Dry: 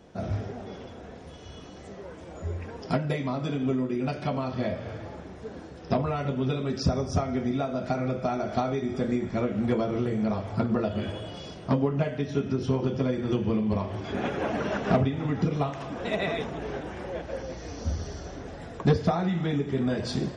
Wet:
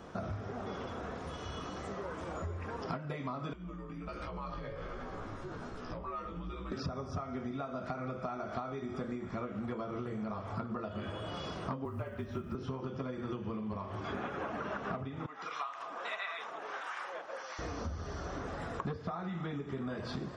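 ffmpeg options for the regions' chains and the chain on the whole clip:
-filter_complex "[0:a]asettb=1/sr,asplit=3[s0][s1][s2];[s0]atrim=end=3.534[s3];[s1]atrim=start=3.53:end=6.72,asetpts=PTS-STARTPTS,afade=t=in:d=0.004:c=qsin,afade=t=out:st=3.186:d=0.004:c=qsin,acompressor=threshold=0.0141:ratio=12:attack=3.2:release=140:knee=1:detection=peak,flanger=delay=15.5:depth=2:speed=1.3,afreqshift=-79[s4];[s2]atrim=start=6.716[s5];[s3][s4]acrossfade=d=0.004:c1=hsin:c2=qsin[s6];[s6][s5]acrossfade=d=0.004:c1=qsin:c2=hsin,asettb=1/sr,asplit=3[s7][s8][s9];[s7]atrim=end=11.854[s10];[s8]atrim=start=11.85:end=12.55,asetpts=PTS-STARTPTS,afade=t=in:d=0.004:c=qsin,afade=t=out:st=0.696:d=0.004:c=qsin,highshelf=f=3800:g=-9.5,afreqshift=-39,acrusher=bits=9:mode=log:mix=0:aa=0.000001[s11];[s9]atrim=start=12.546[s12];[s10][s11]acrossfade=d=0.004:c1=hsin:c2=qsin[s13];[s13][s12]acrossfade=d=0.004:c1=qsin:c2=hsin,asettb=1/sr,asplit=3[s14][s15][s16];[s14]atrim=end=15.264[s17];[s15]atrim=start=15.26:end=17.59,asetpts=PTS-STARTPTS,afade=t=in:d=0.004:c=qsin,afade=t=out:st=2.326:d=0.004:c=qsin,highpass=950,acrossover=split=780[s18][s19];[s18]aeval=exprs='val(0)*(1-0.7/2+0.7/2*cos(2*PI*1.5*n/s))':c=same[s20];[s19]aeval=exprs='val(0)*(1-0.7/2-0.7/2*cos(2*PI*1.5*n/s))':c=same[s21];[s20][s21]amix=inputs=2:normalize=0[s22];[s16]atrim=start=17.586[s23];[s17][s22]acrossfade=d=0.004:c1=hsin:c2=qsin[s24];[s24][s23]acrossfade=d=0.004:c1=qsin:c2=hsin,acrossover=split=4300[s25][s26];[s26]acompressor=threshold=0.00178:ratio=4:attack=1:release=60[s27];[s25][s27]amix=inputs=2:normalize=0,equalizer=f=1200:w=2.1:g=11.5,acompressor=threshold=0.0126:ratio=8,volume=1.26"

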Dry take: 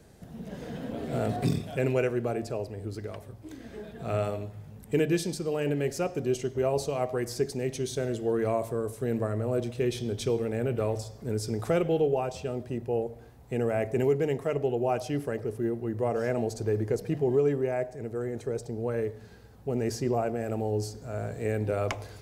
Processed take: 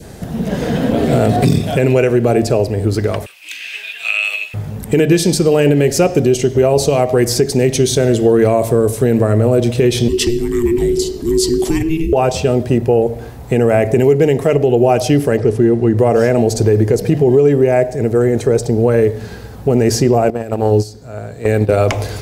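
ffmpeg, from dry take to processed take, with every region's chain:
-filter_complex "[0:a]asettb=1/sr,asplit=3[s0][s1][s2];[s0]atrim=end=3.264[s3];[s1]atrim=start=3.26:end=4.54,asetpts=PTS-STARTPTS,afade=t=in:d=0.004:c=qsin,afade=t=out:st=1.276:d=0.004:c=qsin,highpass=f=2600:t=q:w=11,acompressor=threshold=0.0158:ratio=2.5:attack=3.2:release=140:knee=1:detection=peak[s4];[s2]atrim=start=4.536[s5];[s3][s4]acrossfade=d=0.004:c1=hsin:c2=qsin[s6];[s6][s5]acrossfade=d=0.004:c1=qsin:c2=hsin,asettb=1/sr,asplit=3[s7][s8][s9];[s7]atrim=end=10.084[s10];[s8]atrim=start=10.08:end=12.13,asetpts=PTS-STARTPTS,afade=t=in:d=0.004:c=qsin,afade=t=out:st=2.046:d=0.004:c=qsin,equalizer=f=1900:t=o:w=0.26:g=-7.5,acrossover=split=160|3000[s11][s12][s13];[s12]acompressor=threshold=0.00631:ratio=3:attack=3.2:release=140:knee=2.83:detection=peak[s14];[s11][s14][s13]amix=inputs=3:normalize=0,afreqshift=-480[s15];[s9]atrim=start=12.126[s16];[s10][s15]acrossfade=d=0.004:c1=hsin:c2=qsin[s17];[s17][s16]acrossfade=d=0.004:c1=qsin:c2=hsin,asettb=1/sr,asplit=3[s18][s19][s20];[s18]atrim=end=15.374[s21];[s19]atrim=start=15.37:end=15.98,asetpts=PTS-STARTPTS,afade=t=in:d=0.004:c=qsin,afade=t=out:st=0.606:d=0.004:c=qsin,lowpass=8000,bandreject=f=560:w=16[s22];[s20]atrim=start=15.976[s23];[s21][s22]acrossfade=d=0.004:c1=hsin:c2=qsin[s24];[s24][s23]acrossfade=d=0.004:c1=qsin:c2=hsin,asettb=1/sr,asplit=3[s25][s26][s27];[s25]atrim=end=20.304[s28];[s26]atrim=start=20.3:end=21.86,asetpts=PTS-STARTPTS,afade=t=in:d=0.004:c=qsin,afade=t=out:st=1.556:d=0.004:c=qsin,equalizer=f=4100:t=o:w=0.42:g=5.5,agate=range=0.178:threshold=0.0316:ratio=16:release=100:detection=peak[s29];[s27]atrim=start=21.856[s30];[s28][s29]acrossfade=d=0.004:c1=hsin:c2=qsin[s31];[s31][s30]acrossfade=d=0.004:c1=qsin:c2=hsin,adynamicequalizer=threshold=0.00447:dfrequency=1200:dqfactor=1.2:tfrequency=1200:tqfactor=1.2:attack=5:release=100:ratio=0.375:range=3:mode=cutabove:tftype=bell,acompressor=threshold=0.0398:ratio=4,alimiter=level_in=12.6:limit=0.891:release=50:level=0:latency=1,volume=0.891"

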